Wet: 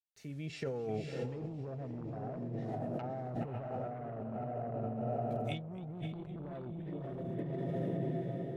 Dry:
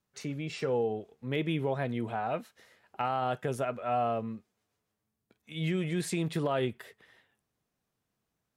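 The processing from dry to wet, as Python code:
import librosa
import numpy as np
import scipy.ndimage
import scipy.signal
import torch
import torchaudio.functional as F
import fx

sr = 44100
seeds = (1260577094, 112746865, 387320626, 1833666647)

p1 = fx.fade_in_head(x, sr, length_s=2.12)
p2 = fx.peak_eq(p1, sr, hz=1100.0, db=-12.5, octaves=0.23)
p3 = fx.quant_dither(p2, sr, seeds[0], bits=12, dither='none')
p4 = fx.env_lowpass_down(p3, sr, base_hz=540.0, full_db=-31.0)
p5 = fx.low_shelf(p4, sr, hz=160.0, db=10.5)
p6 = fx.small_body(p5, sr, hz=(660.0, 1800.0), ring_ms=45, db=7)
p7 = p6 + fx.echo_diffused(p6, sr, ms=565, feedback_pct=52, wet_db=-3.0, dry=0)
p8 = fx.cheby_harmonics(p7, sr, harmonics=(3, 5), levels_db=(-10, -13), full_scale_db=-15.5)
p9 = fx.over_compress(p8, sr, threshold_db=-38.0, ratio=-1.0)
p10 = fx.echo_warbled(p9, sr, ms=259, feedback_pct=73, rate_hz=2.8, cents=145, wet_db=-21)
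y = F.gain(torch.from_numpy(p10), -1.5).numpy()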